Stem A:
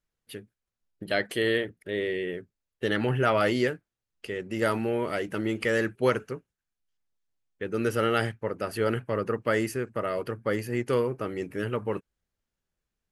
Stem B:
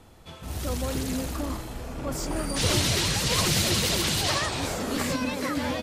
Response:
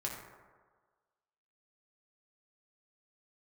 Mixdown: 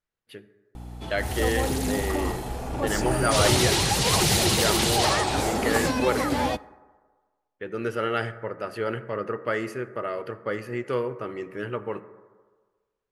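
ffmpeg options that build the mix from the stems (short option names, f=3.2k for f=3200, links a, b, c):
-filter_complex "[0:a]lowpass=f=2.5k:p=1,lowshelf=f=340:g=-8.5,volume=-0.5dB,asplit=2[a][b];[b]volume=-9dB[c];[1:a]equalizer=f=400:t=o:w=0.33:g=5,equalizer=f=800:t=o:w=0.33:g=11,equalizer=f=10k:t=o:w=0.33:g=4,aeval=exprs='val(0)+0.0112*(sin(2*PI*60*n/s)+sin(2*PI*2*60*n/s)/2+sin(2*PI*3*60*n/s)/3+sin(2*PI*4*60*n/s)/4+sin(2*PI*5*60*n/s)/5)':c=same,adelay=750,volume=0.5dB,asplit=2[d][e];[e]volume=-17.5dB[f];[2:a]atrim=start_sample=2205[g];[c][f]amix=inputs=2:normalize=0[h];[h][g]afir=irnorm=-1:irlink=0[i];[a][d][i]amix=inputs=3:normalize=0"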